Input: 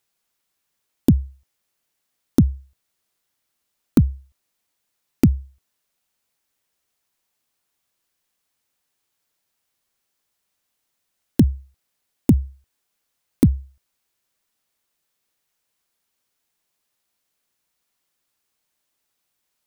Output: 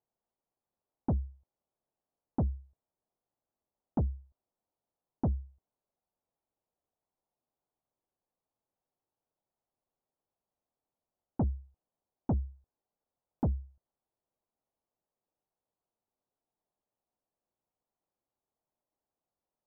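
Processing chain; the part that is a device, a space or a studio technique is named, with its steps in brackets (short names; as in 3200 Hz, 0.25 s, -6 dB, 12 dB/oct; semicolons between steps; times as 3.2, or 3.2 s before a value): overdriven synthesiser ladder filter (soft clip -18.5 dBFS, distortion -6 dB; ladder low-pass 1000 Hz, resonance 30%)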